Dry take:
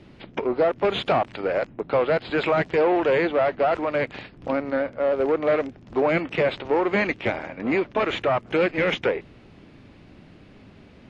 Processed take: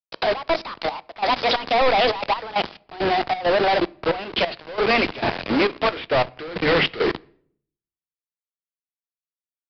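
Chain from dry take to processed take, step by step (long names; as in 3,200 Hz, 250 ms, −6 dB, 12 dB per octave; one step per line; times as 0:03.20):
gliding playback speed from 170% → 59%
high-pass filter 47 Hz 12 dB per octave
mains-hum notches 60/120/180/240/300/360/420/480 Hz
output level in coarse steps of 11 dB
log-companded quantiser 2 bits
gate pattern "xxx.x..x...xxx.x" 135 BPM −12 dB
on a send at −21 dB: convolution reverb RT60 0.75 s, pre-delay 6 ms
on the sum: downsampling to 11,025 Hz
multiband upward and downward expander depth 40%
level +8 dB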